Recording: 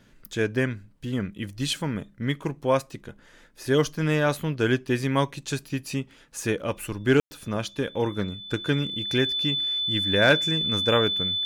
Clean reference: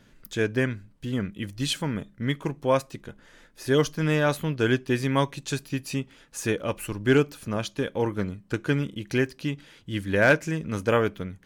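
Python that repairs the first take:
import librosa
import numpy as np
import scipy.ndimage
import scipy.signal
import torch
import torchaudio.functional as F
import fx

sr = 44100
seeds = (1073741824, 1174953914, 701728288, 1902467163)

y = fx.notch(x, sr, hz=3500.0, q=30.0)
y = fx.fix_ambience(y, sr, seeds[0], print_start_s=3.11, print_end_s=3.61, start_s=7.2, end_s=7.31)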